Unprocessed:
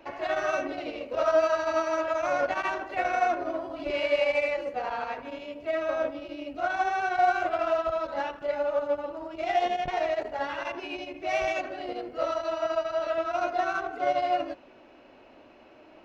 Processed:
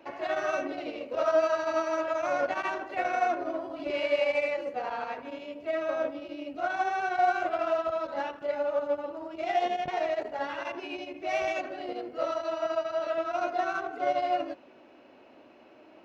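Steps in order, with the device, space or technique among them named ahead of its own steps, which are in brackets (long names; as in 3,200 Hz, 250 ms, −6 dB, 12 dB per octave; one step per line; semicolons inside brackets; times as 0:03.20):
filter by subtraction (in parallel: low-pass filter 230 Hz 12 dB per octave + polarity inversion)
on the sum: level −2.5 dB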